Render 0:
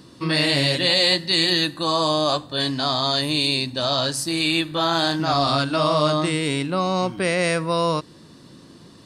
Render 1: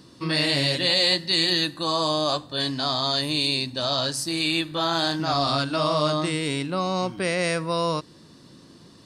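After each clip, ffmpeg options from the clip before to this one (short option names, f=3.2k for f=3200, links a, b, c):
-af "equalizer=f=5.3k:t=o:w=0.69:g=3,volume=-3.5dB"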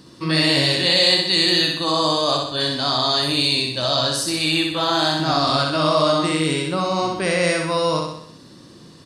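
-af "aecho=1:1:63|126|189|252|315|378|441:0.668|0.361|0.195|0.105|0.0568|0.0307|0.0166,volume=3dB"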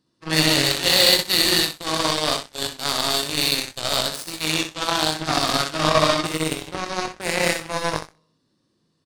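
-filter_complex "[0:a]aeval=exprs='0.668*(cos(1*acos(clip(val(0)/0.668,-1,1)))-cos(1*PI/2))+0.0133*(cos(3*acos(clip(val(0)/0.668,-1,1)))-cos(3*PI/2))+0.0944*(cos(7*acos(clip(val(0)/0.668,-1,1)))-cos(7*PI/2))':c=same,asplit=2[a][b];[b]adelay=19,volume=-10.5dB[c];[a][c]amix=inputs=2:normalize=0,volume=1.5dB"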